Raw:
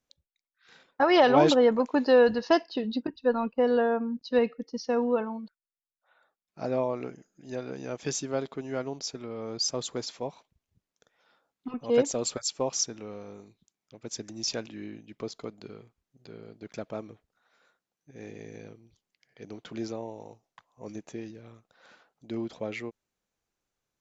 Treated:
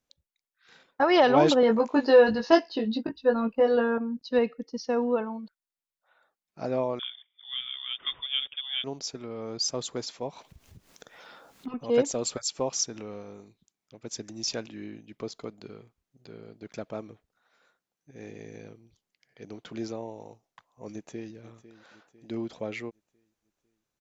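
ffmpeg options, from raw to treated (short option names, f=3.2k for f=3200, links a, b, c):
-filter_complex "[0:a]asettb=1/sr,asplit=3[a][b][c];[a]atrim=end=1.614[d];[b]atrim=start=1.61:end=3.98,asetpts=PTS-STARTPTS,afade=t=in:d=0.004:c=qsin,afade=t=out:st=2.366:d=0.004:c=qsin,asplit=2[e][f];[f]adelay=18,volume=-3dB[g];[e][g]amix=inputs=2:normalize=0,atrim=end_sample=104517[h];[c]atrim=start=3.976[i];[d][h]acrossfade=d=0.004:c1=hsin:c2=qsin[j];[j][i]acrossfade=d=0.004:c1=qsin:c2=hsin,asettb=1/sr,asplit=3[k][l][m];[k]atrim=end=6.994[n];[l]atrim=start=6.99:end=8.84,asetpts=PTS-STARTPTS,afade=t=in:d=0.004:c=qsin,afade=t=out:st=1.846:d=0.004:c=qsin,lowpass=f=3.1k:t=q:w=0.5098,lowpass=f=3.1k:t=q:w=0.6013,lowpass=f=3.1k:t=q:w=0.9,lowpass=f=3.1k:t=q:w=2.563,afreqshift=-3700[o];[m]atrim=start=8.836[p];[n][o]acrossfade=d=0.004:c1=hsin:c2=qsin[q];[q][p]acrossfade=d=0.004:c1=qsin:c2=hsin,asplit=3[r][s][t];[r]afade=t=out:st=10.27:d=0.02[u];[s]acompressor=mode=upward:threshold=-33dB:ratio=2.5:attack=3.2:release=140:knee=2.83:detection=peak,afade=t=in:st=10.27:d=0.02,afade=t=out:st=13.2:d=0.02[v];[t]afade=t=in:st=13.2:d=0.02[w];[u][v][w]amix=inputs=3:normalize=0,asplit=2[x][y];[y]afade=t=in:st=20.92:d=0.01,afade=t=out:st=21.33:d=0.01,aecho=0:1:500|1000|1500|2000|2500:0.177828|0.088914|0.044457|0.0222285|0.0111142[z];[x][z]amix=inputs=2:normalize=0"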